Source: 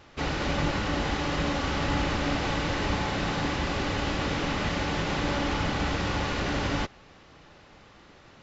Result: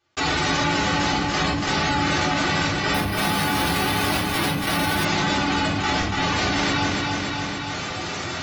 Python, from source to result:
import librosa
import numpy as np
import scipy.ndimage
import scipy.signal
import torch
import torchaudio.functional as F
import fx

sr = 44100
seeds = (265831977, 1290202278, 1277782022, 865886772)

y = fx.envelope_flatten(x, sr, power=0.3)
y = scipy.signal.sosfilt(scipy.signal.butter(2, 62.0, 'highpass', fs=sr, output='sos'), y)
y = fx.notch(y, sr, hz=560.0, q=12.0)
y = fx.spec_gate(y, sr, threshold_db=-10, keep='strong')
y = fx.step_gate(y, sr, bpm=90, pattern='.xxxxxx.x', floor_db=-60.0, edge_ms=4.5)
y = fx.echo_feedback(y, sr, ms=285, feedback_pct=41, wet_db=-9.0)
y = fx.room_shoebox(y, sr, seeds[0], volume_m3=190.0, walls='furnished', distance_m=3.6)
y = fx.resample_bad(y, sr, factor=3, down='filtered', up='hold', at=(2.94, 5.05))
y = fx.env_flatten(y, sr, amount_pct=70)
y = y * 10.0 ** (-2.0 / 20.0)